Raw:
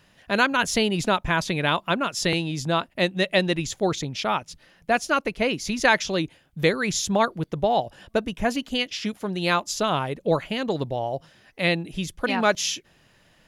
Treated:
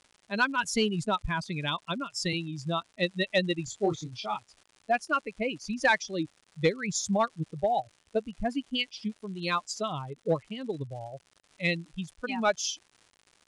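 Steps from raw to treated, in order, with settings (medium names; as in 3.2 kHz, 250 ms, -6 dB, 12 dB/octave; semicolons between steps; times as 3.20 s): expander on every frequency bin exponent 2; crackle 210 per s -43 dBFS; in parallel at -3.5 dB: hard clipper -18 dBFS, distortion -15 dB; 3.65–4.37 s: on the sum: doubling 25 ms -5 dB; resampled via 22.05 kHz; trim -5.5 dB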